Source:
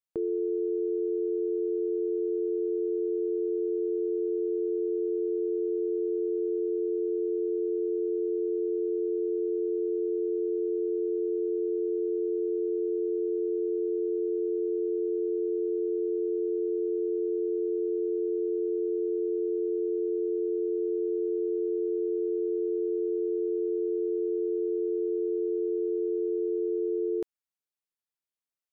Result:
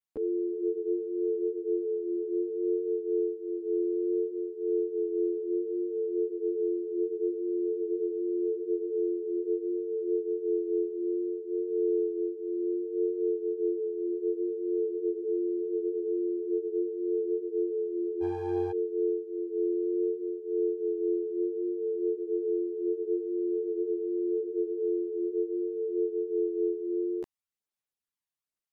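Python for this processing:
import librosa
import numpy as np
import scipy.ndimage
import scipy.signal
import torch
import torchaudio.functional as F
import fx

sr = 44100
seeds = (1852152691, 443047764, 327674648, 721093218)

y = fx.lower_of_two(x, sr, delay_ms=0.4, at=(18.2, 18.7), fade=0.02)
y = fx.chorus_voices(y, sr, voices=2, hz=0.63, base_ms=12, depth_ms=3.0, mix_pct=65)
y = F.gain(torch.from_numpy(y), 1.0).numpy()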